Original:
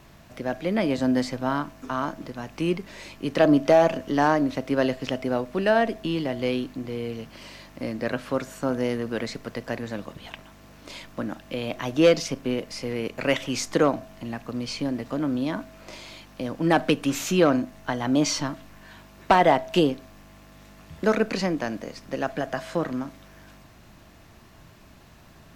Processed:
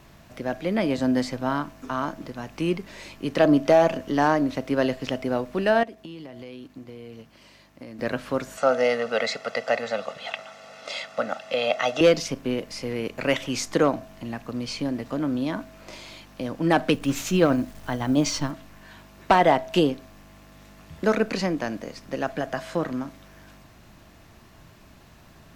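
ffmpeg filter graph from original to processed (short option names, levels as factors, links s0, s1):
-filter_complex "[0:a]asettb=1/sr,asplit=3[s0][s1][s2];[s0]atrim=end=5.834[s3];[s1]atrim=start=5.83:end=7.99,asetpts=PTS-STARTPTS,afade=t=in:d=0.004:c=qsin,afade=t=out:st=2.156:d=0.004:c=qsin,highpass=47,agate=range=0.355:threshold=0.0178:ratio=16:release=100:detection=peak,acompressor=threshold=0.0158:ratio=10:attack=3.2:release=140:knee=1:detection=peak[s4];[s2]atrim=start=7.986[s5];[s3][s4]acrossfade=d=0.004:c1=hsin:c2=qsin[s6];[s6][s5]acrossfade=d=0.004:c1=qsin:c2=hsin,asettb=1/sr,asplit=3[s7][s8][s9];[s7]atrim=end=8.574[s10];[s8]atrim=start=8.57:end=12.01,asetpts=PTS-STARTPTS,afade=t=in:d=0.004:c=qsin,afade=t=out:st=3.436:d=0.004:c=qsin,highpass=410,lowpass=6100,aecho=1:1:1.5:0.96,atrim=end_sample=151704,acontrast=48[s11];[s9]atrim=start=12.006[s12];[s10][s11]acrossfade=d=0.004:c1=hsin:c2=qsin[s13];[s13][s12]acrossfade=d=0.004:c1=qsin:c2=hsin,asettb=1/sr,asplit=3[s14][s15][s16];[s14]atrim=end=16.944[s17];[s15]atrim=start=16.94:end=18.51,asetpts=PTS-STARTPTS,afade=t=in:d=0.004:c=qsin,afade=t=out:st=1.566:d=0.004:c=qsin,tremolo=f=12:d=0.35,lowshelf=f=130:g=9.5,acrusher=bits=9:dc=4:mix=0:aa=0.000001[s18];[s16]atrim=start=18.506[s19];[s17][s18]acrossfade=d=0.004:c1=hsin:c2=qsin[s20];[s20][s19]acrossfade=d=0.004:c1=qsin:c2=hsin"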